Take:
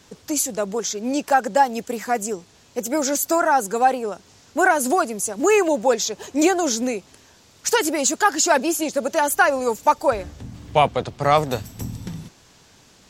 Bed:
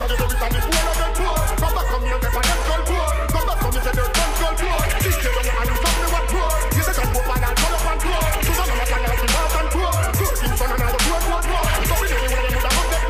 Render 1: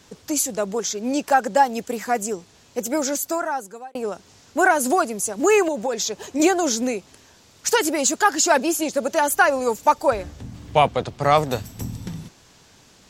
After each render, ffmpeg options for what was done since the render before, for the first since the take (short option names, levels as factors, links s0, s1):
-filter_complex "[0:a]asettb=1/sr,asplit=3[s0][s1][s2];[s0]atrim=end=5.684[s3];[s1]atrim=start=5.68:end=6.4,asetpts=PTS-STARTPTS,afade=t=in:d=0.004:c=qsin,afade=t=out:st=0.716:d=0.004:c=qsin,acompressor=threshold=0.112:ratio=10:attack=3.2:release=140:knee=1:detection=peak[s4];[s2]atrim=start=6.396[s5];[s3][s4]acrossfade=d=0.004:c1=hsin:c2=qsin[s6];[s6][s5]acrossfade=d=0.004:c1=qsin:c2=hsin,asplit=2[s7][s8];[s7]atrim=end=3.95,asetpts=PTS-STARTPTS,afade=t=out:st=2.87:d=1.08[s9];[s8]atrim=start=3.95,asetpts=PTS-STARTPTS,afade=t=in:d=0.004:c=hsin[s10];[s9][s10]concat=n=2:v=0:a=1"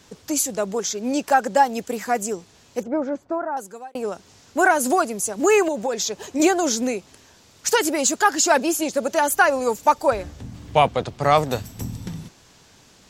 -filter_complex "[0:a]asettb=1/sr,asplit=3[s0][s1][s2];[s0]atrim=end=2.834[s3];[s1]atrim=start=2.83:end=3.57,asetpts=PTS-STARTPTS,afade=t=in:d=0.004:c=qsin,afade=t=out:st=0.736:d=0.004:c=qsin,lowpass=1100[s4];[s2]atrim=start=3.566[s5];[s3][s4]acrossfade=d=0.004:c1=hsin:c2=qsin[s6];[s6][s5]acrossfade=d=0.004:c1=qsin:c2=hsin"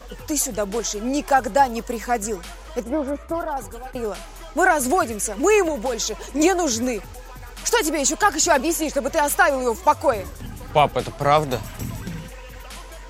-filter_complex "[1:a]volume=0.106[s0];[0:a][s0]amix=inputs=2:normalize=0"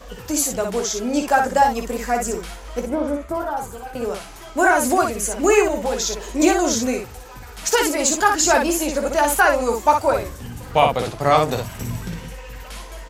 -af "aecho=1:1:17|59:0.376|0.596"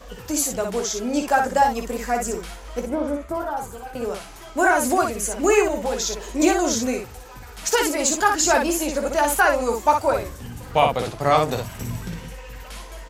-af "volume=0.794"